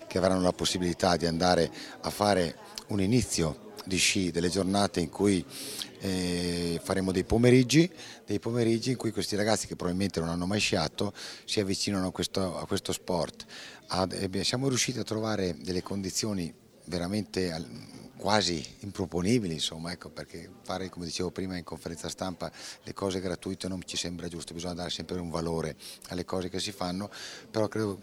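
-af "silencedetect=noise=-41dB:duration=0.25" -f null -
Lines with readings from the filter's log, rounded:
silence_start: 16.51
silence_end: 16.88 | silence_duration: 0.37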